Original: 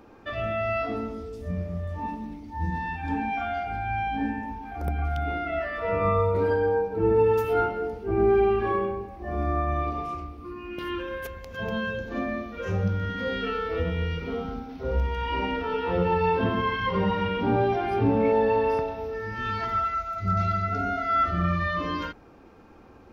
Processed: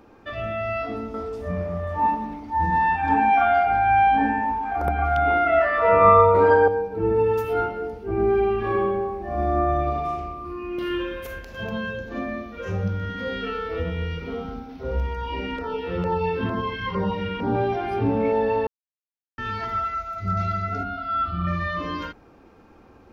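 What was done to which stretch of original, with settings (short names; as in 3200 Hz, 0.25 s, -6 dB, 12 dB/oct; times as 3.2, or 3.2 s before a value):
1.14–6.68 bell 1000 Hz +13.5 dB 2.4 oct
8.54–11.64 reverb throw, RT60 0.95 s, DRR 0.5 dB
15.13–17.55 LFO notch saw down 2.2 Hz 500–3600 Hz
18.67–19.38 mute
20.83–21.47 fixed phaser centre 1900 Hz, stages 6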